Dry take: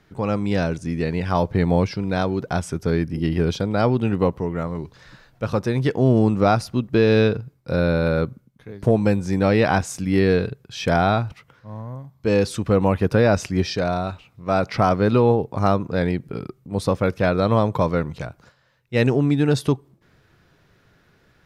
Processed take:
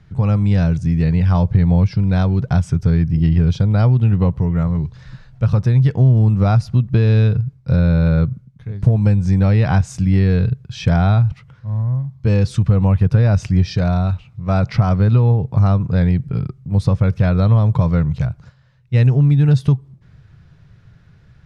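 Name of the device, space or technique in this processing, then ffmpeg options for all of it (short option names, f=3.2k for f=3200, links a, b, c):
jukebox: -af "lowpass=7.7k,lowshelf=f=200:t=q:w=1.5:g=13,acompressor=threshold=-11dB:ratio=3"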